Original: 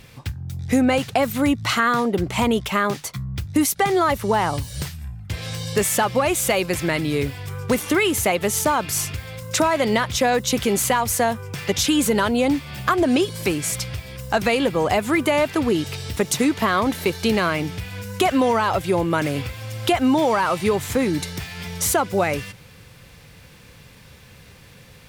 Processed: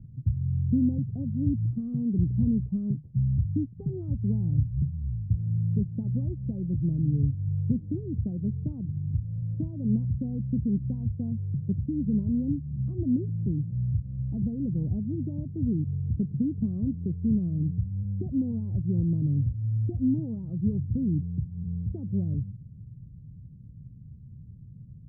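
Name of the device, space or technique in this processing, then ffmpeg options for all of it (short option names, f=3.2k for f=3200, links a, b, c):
the neighbour's flat through the wall: -af "lowpass=f=220:w=0.5412,lowpass=f=220:w=1.3066,equalizer=f=120:t=o:w=0.73:g=6"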